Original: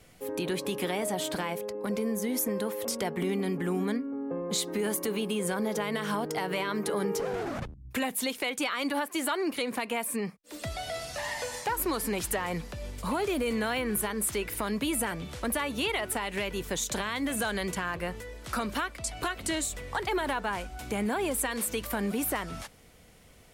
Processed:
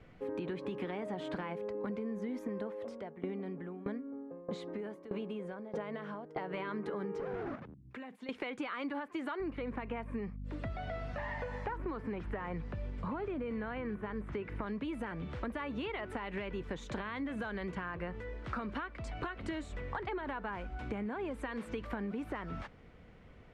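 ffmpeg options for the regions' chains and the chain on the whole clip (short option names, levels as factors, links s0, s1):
-filter_complex "[0:a]asettb=1/sr,asplit=3[s0][s1][s2];[s0]atrim=end=2.614[s3];[s1]atrim=start=2.61:end=6.54,asetpts=PTS-STARTPTS,afade=t=in:d=0.004:c=qsin,afade=t=out:st=3.926:d=0.004:c=qsin,equalizer=f=620:w=2.7:g=7.5,aeval=exprs='val(0)*pow(10,-21*if(lt(mod(1.6*n/s,1),2*abs(1.6)/1000),1-mod(1.6*n/s,1)/(2*abs(1.6)/1000),(mod(1.6*n/s,1)-2*abs(1.6)/1000)/(1-2*abs(1.6)/1000))/20)':c=same[s4];[s2]atrim=start=6.536[s5];[s3][s4]acrossfade=d=0.004:c1=hsin:c2=qsin[s6];[s6][s5]acrossfade=d=0.004:c1=qsin:c2=hsin,asettb=1/sr,asplit=3[s7][s8][s9];[s7]atrim=end=7.554[s10];[s8]atrim=start=7.55:end=8.29,asetpts=PTS-STARTPTS,afade=t=in:d=0.004:c=qsin,afade=t=out:st=0.736:d=0.004:c=qsin,highpass=160,acompressor=threshold=0.00891:ratio=16:attack=3.2:release=140:knee=1:detection=peak[s11];[s9]atrim=start=8.286[s12];[s10][s11]acrossfade=d=0.004:c1=hsin:c2=qsin[s13];[s13][s12]acrossfade=d=0.004:c1=qsin:c2=hsin,asettb=1/sr,asplit=3[s14][s15][s16];[s14]atrim=end=9.404[s17];[s15]atrim=start=9.4:end=14.66,asetpts=PTS-STARTPTS,afade=t=in:d=0.004:c=qsin,afade=t=out:st=5.256:d=0.004:c=qsin,acrossover=split=2600[s18][s19];[s19]acompressor=threshold=0.00447:ratio=4:attack=1:release=60[s20];[s18][s20]amix=inputs=2:normalize=0,aeval=exprs='val(0)+0.00891*(sin(2*PI*50*n/s)+sin(2*PI*2*50*n/s)/2+sin(2*PI*3*50*n/s)/3+sin(2*PI*4*50*n/s)/4+sin(2*PI*5*50*n/s)/5)':c=same[s21];[s16]atrim=start=14.656[s22];[s17][s21]acrossfade=d=0.004:c1=hsin:c2=qsin[s23];[s23][s22]acrossfade=d=0.004:c1=qsin:c2=hsin,lowpass=1800,equalizer=f=690:t=o:w=0.99:g=-4,acompressor=threshold=0.0141:ratio=6,volume=1.19"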